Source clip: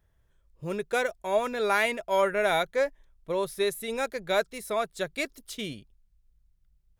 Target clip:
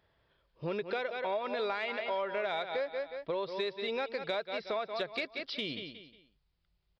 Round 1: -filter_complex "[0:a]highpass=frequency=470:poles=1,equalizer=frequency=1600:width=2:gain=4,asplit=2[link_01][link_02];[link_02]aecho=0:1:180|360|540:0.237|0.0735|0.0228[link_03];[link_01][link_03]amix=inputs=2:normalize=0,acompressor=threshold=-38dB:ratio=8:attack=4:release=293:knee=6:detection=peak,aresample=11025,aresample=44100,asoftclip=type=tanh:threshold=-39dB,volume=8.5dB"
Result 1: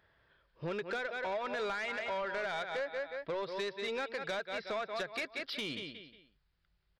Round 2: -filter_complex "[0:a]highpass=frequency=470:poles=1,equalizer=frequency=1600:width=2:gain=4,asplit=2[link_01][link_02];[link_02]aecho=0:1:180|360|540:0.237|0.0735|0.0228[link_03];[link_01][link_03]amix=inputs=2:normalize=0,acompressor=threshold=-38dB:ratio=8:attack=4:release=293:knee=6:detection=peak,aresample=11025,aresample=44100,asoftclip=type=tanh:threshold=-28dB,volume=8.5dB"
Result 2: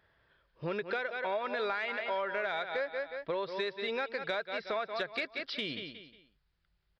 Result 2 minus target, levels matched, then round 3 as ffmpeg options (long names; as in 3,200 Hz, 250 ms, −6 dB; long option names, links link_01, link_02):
2,000 Hz band +3.0 dB
-filter_complex "[0:a]highpass=frequency=470:poles=1,equalizer=frequency=1600:width=2:gain=-4,asplit=2[link_01][link_02];[link_02]aecho=0:1:180|360|540:0.237|0.0735|0.0228[link_03];[link_01][link_03]amix=inputs=2:normalize=0,acompressor=threshold=-38dB:ratio=8:attack=4:release=293:knee=6:detection=peak,aresample=11025,aresample=44100,asoftclip=type=tanh:threshold=-28dB,volume=8.5dB"